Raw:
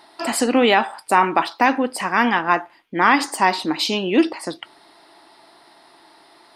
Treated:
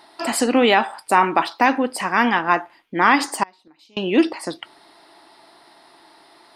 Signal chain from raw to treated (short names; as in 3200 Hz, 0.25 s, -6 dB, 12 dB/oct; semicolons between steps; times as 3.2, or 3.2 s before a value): 3.43–3.97 flipped gate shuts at -18 dBFS, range -31 dB